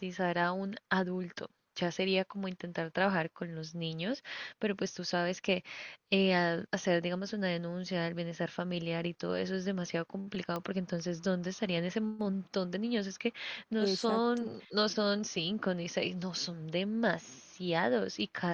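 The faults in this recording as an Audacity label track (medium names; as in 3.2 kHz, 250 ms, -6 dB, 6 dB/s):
10.560000	10.560000	pop -22 dBFS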